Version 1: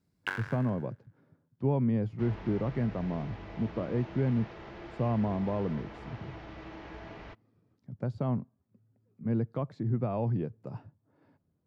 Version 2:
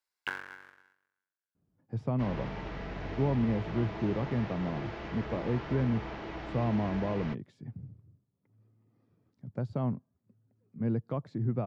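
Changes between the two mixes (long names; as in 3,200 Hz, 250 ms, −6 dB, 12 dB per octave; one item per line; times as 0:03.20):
speech: entry +1.55 s
second sound +6.5 dB
reverb: off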